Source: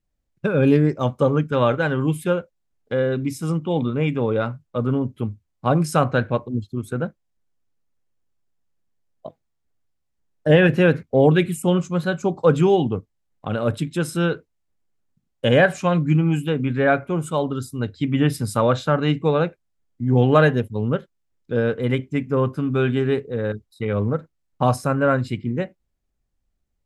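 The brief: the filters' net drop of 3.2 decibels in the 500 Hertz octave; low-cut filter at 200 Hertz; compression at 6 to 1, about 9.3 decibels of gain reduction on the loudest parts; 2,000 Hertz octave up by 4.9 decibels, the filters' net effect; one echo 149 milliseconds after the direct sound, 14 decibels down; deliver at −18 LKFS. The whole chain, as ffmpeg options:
ffmpeg -i in.wav -af "highpass=200,equalizer=frequency=500:width_type=o:gain=-4,equalizer=frequency=2000:width_type=o:gain=7,acompressor=threshold=-20dB:ratio=6,aecho=1:1:149:0.2,volume=9dB" out.wav

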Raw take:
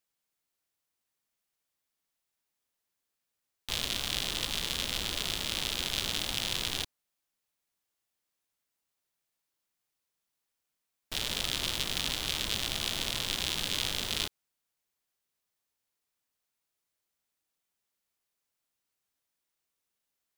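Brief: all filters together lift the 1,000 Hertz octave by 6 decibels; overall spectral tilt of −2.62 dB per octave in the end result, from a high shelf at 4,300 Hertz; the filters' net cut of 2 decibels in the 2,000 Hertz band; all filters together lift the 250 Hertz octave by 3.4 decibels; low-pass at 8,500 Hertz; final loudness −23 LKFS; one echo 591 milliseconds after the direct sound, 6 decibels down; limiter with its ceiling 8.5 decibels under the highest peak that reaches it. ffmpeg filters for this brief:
ffmpeg -i in.wav -af "lowpass=8500,equalizer=frequency=250:width_type=o:gain=4,equalizer=frequency=1000:width_type=o:gain=8.5,equalizer=frequency=2000:width_type=o:gain=-3.5,highshelf=frequency=4300:gain=-5,alimiter=limit=-23.5dB:level=0:latency=1,aecho=1:1:591:0.501,volume=15dB" out.wav

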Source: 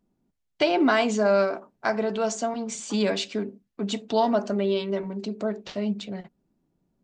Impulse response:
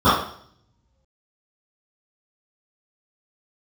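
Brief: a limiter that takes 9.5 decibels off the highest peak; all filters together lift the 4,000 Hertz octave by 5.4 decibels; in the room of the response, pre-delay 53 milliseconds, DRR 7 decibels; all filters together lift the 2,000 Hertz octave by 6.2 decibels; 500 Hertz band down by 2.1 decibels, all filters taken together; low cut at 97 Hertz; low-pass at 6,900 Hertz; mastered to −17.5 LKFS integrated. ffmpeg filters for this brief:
-filter_complex "[0:a]highpass=97,lowpass=6900,equalizer=frequency=500:width_type=o:gain=-3.5,equalizer=frequency=2000:width_type=o:gain=7.5,equalizer=frequency=4000:width_type=o:gain=4.5,alimiter=limit=-14.5dB:level=0:latency=1,asplit=2[link_01][link_02];[1:a]atrim=start_sample=2205,adelay=53[link_03];[link_02][link_03]afir=irnorm=-1:irlink=0,volume=-33.5dB[link_04];[link_01][link_04]amix=inputs=2:normalize=0,volume=9.5dB"

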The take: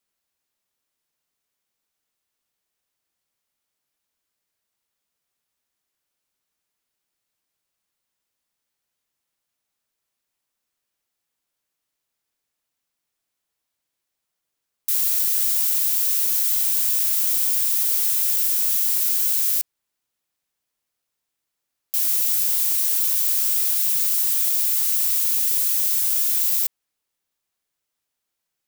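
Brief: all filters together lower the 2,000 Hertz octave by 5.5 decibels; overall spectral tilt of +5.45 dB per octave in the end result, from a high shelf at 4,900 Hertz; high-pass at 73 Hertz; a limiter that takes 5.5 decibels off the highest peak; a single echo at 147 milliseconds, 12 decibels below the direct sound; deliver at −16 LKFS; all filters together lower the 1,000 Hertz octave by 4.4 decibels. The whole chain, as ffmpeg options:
ffmpeg -i in.wav -af "highpass=73,equalizer=frequency=1000:width_type=o:gain=-3.5,equalizer=frequency=2000:width_type=o:gain=-5.5,highshelf=frequency=4900:gain=-4,alimiter=limit=-16.5dB:level=0:latency=1,aecho=1:1:147:0.251,volume=7.5dB" out.wav

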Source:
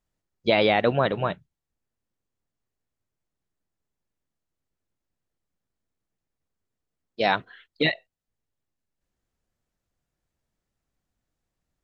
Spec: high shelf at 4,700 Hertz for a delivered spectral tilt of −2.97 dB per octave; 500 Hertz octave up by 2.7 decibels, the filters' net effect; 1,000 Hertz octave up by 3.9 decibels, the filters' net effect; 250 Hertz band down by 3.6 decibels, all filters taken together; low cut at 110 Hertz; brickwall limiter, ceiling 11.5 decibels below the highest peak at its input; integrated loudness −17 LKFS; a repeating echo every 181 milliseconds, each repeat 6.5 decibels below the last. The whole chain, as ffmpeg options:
ffmpeg -i in.wav -af "highpass=110,equalizer=frequency=250:width_type=o:gain=-6,equalizer=frequency=500:width_type=o:gain=3,equalizer=frequency=1000:width_type=o:gain=5,highshelf=frequency=4700:gain=-6.5,alimiter=limit=-17dB:level=0:latency=1,aecho=1:1:181|362|543|724|905|1086:0.473|0.222|0.105|0.0491|0.0231|0.0109,volume=12dB" out.wav

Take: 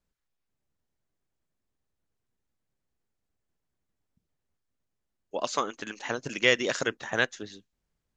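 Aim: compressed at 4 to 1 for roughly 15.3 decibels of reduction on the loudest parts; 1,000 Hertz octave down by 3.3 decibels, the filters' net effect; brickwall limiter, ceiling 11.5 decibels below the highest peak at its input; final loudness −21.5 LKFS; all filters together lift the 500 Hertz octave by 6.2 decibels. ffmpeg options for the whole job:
ffmpeg -i in.wav -af "equalizer=frequency=500:width_type=o:gain=8.5,equalizer=frequency=1000:width_type=o:gain=-7,acompressor=threshold=-32dB:ratio=4,volume=19dB,alimiter=limit=-8dB:level=0:latency=1" out.wav

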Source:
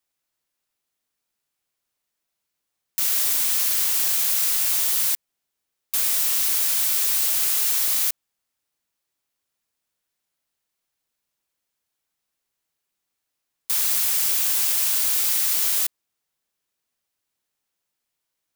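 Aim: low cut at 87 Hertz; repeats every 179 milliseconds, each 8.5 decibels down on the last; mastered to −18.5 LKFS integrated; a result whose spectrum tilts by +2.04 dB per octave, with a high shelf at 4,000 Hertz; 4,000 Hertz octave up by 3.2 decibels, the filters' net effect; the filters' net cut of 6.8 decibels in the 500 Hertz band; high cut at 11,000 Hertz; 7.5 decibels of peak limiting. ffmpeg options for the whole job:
ffmpeg -i in.wav -af "highpass=87,lowpass=11000,equalizer=frequency=500:width_type=o:gain=-9,highshelf=frequency=4000:gain=-6,equalizer=frequency=4000:width_type=o:gain=8,alimiter=limit=-22.5dB:level=0:latency=1,aecho=1:1:179|358|537|716:0.376|0.143|0.0543|0.0206,volume=11dB" out.wav

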